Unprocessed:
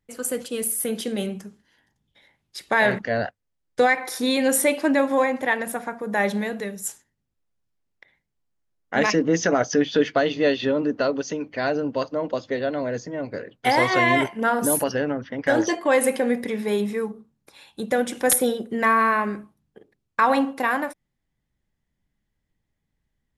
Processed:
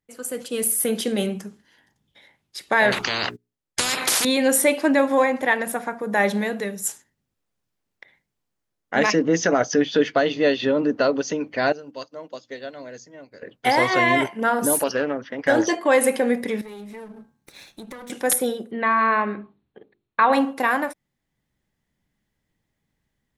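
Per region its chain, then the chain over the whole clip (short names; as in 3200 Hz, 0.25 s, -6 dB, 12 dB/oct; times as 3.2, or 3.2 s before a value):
2.92–4.25 notches 60/120/180/240/300/360/420 Hz + gate -52 dBFS, range -27 dB + spectral compressor 10:1
11.72–13.42 pre-emphasis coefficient 0.8 + notches 60/120/180/240/300 Hz + upward expander, over -56 dBFS
14.73–15.45 tone controls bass -8 dB, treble +2 dB + Doppler distortion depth 0.1 ms
16.61–18.1 minimum comb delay 0.51 ms + de-hum 121.8 Hz, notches 13 + compressor 5:1, threshold -40 dBFS
18.71–20.33 Chebyshev low-pass 4300 Hz, order 8 + notches 50/100/150/200/250/300/350/400/450 Hz
whole clip: low shelf 76 Hz -10.5 dB; AGC gain up to 9.5 dB; gain -4.5 dB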